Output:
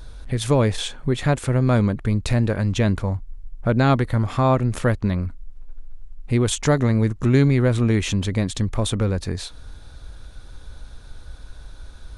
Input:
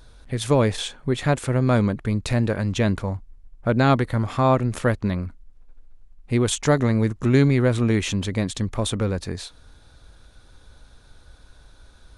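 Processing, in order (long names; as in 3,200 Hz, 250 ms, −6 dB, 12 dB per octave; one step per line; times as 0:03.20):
low-shelf EQ 92 Hz +7.5 dB
in parallel at +1.5 dB: downward compressor, threshold −31 dBFS, peak gain reduction 19 dB
on the sum: level −2 dB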